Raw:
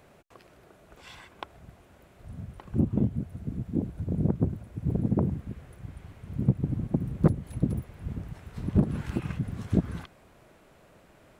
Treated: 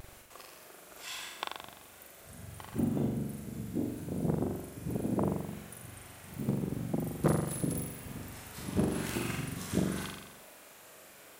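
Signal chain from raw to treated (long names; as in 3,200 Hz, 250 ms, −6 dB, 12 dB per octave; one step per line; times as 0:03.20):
RIAA equalisation recording
pitch vibrato 0.8 Hz 36 cents
flutter between parallel walls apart 7.3 metres, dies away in 0.92 s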